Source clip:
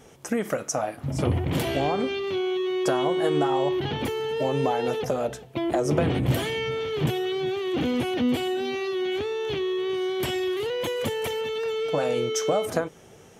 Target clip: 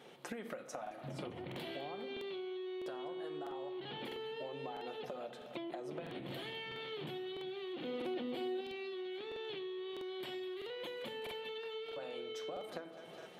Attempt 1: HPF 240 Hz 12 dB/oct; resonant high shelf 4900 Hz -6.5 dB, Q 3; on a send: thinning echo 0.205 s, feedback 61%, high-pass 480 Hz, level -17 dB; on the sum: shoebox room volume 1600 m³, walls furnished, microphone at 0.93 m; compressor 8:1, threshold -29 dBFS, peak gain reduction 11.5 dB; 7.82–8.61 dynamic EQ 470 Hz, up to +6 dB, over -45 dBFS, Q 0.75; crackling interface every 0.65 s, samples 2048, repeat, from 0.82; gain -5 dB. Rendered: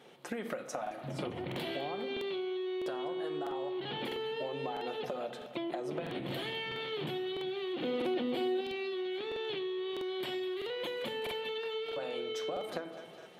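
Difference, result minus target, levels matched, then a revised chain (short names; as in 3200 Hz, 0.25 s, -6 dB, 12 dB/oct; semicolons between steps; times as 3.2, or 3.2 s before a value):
compressor: peak gain reduction -6.5 dB
HPF 240 Hz 12 dB/oct; resonant high shelf 4900 Hz -6.5 dB, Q 3; on a send: thinning echo 0.205 s, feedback 61%, high-pass 480 Hz, level -17 dB; on the sum: shoebox room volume 1600 m³, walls furnished, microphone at 0.93 m; compressor 8:1, threshold -36.5 dBFS, peak gain reduction 18 dB; 7.82–8.61 dynamic EQ 470 Hz, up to +6 dB, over -45 dBFS, Q 0.75; crackling interface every 0.65 s, samples 2048, repeat, from 0.82; gain -5 dB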